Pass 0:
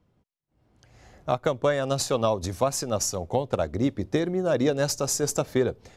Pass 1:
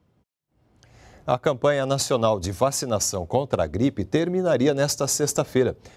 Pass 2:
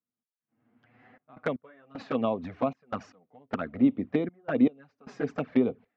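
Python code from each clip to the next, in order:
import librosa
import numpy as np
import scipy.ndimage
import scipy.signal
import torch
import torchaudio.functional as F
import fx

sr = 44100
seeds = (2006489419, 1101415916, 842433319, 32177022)

y1 = scipy.signal.sosfilt(scipy.signal.butter(2, 42.0, 'highpass', fs=sr, output='sos'), x)
y1 = y1 * 10.0 ** (3.0 / 20.0)
y2 = fx.cabinet(y1, sr, low_hz=240.0, low_slope=12, high_hz=2400.0, hz=(250.0, 360.0, 570.0, 910.0), db=(8, -9, -8, -6))
y2 = fx.step_gate(y2, sr, bpm=77, pattern='..xxxx.x', floor_db=-24.0, edge_ms=4.5)
y2 = fx.env_flanger(y2, sr, rest_ms=8.8, full_db=-21.5)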